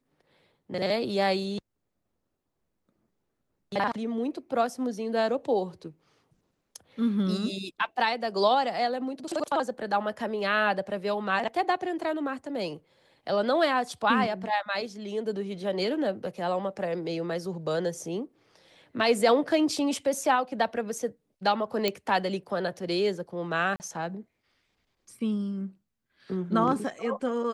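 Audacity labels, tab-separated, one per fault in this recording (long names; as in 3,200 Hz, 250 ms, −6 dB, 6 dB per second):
21.880000	21.880000	click −11 dBFS
23.760000	23.800000	drop-out 39 ms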